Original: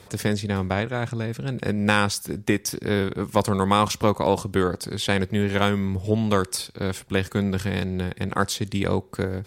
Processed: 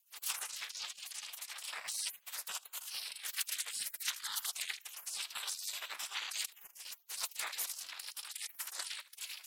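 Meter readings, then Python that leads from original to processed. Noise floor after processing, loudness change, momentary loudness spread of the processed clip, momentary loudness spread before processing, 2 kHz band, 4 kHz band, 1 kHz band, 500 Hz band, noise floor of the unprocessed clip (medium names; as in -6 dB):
-66 dBFS, -15.5 dB, 7 LU, 8 LU, -15.5 dB, -8.0 dB, -24.5 dB, -39.5 dB, -49 dBFS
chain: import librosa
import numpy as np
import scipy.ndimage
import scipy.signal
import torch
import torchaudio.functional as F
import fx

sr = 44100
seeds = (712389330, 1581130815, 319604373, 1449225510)

p1 = fx.wow_flutter(x, sr, seeds[0], rate_hz=2.1, depth_cents=75.0)
p2 = fx.spec_repair(p1, sr, seeds[1], start_s=4.1, length_s=0.35, low_hz=820.0, high_hz=3100.0, source='after')
p3 = fx.highpass(p2, sr, hz=86.0, slope=6)
p4 = fx.transient(p3, sr, attack_db=-7, sustain_db=11)
p5 = fx.whisperise(p4, sr, seeds[2])
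p6 = p5 + fx.echo_feedback(p5, sr, ms=78, feedback_pct=30, wet_db=-9.5, dry=0)
p7 = fx.spec_gate(p6, sr, threshold_db=-30, keep='weak')
p8 = p7 * np.sin(2.0 * np.pi * 190.0 * np.arange(len(p7)) / sr)
p9 = fx.transient(p8, sr, attack_db=3, sustain_db=-11)
p10 = fx.low_shelf(p9, sr, hz=450.0, db=-9.5)
y = p10 * 10.0 ** (7.5 / 20.0)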